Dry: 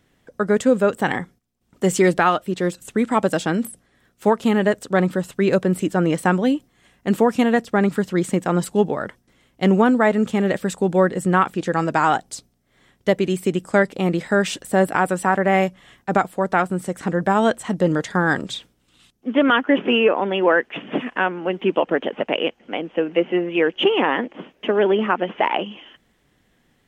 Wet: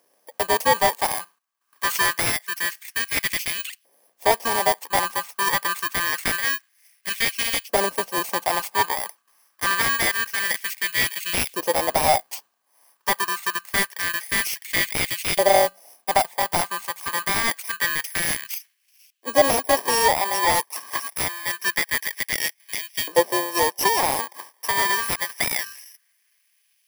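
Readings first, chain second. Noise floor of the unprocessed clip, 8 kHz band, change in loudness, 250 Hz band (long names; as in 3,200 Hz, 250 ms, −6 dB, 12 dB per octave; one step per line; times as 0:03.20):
−64 dBFS, +10.0 dB, −2.0 dB, −16.5 dB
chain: samples in bit-reversed order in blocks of 32 samples
auto-filter high-pass saw up 0.26 Hz 560–2,700 Hz
slew-rate limiting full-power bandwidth 850 Hz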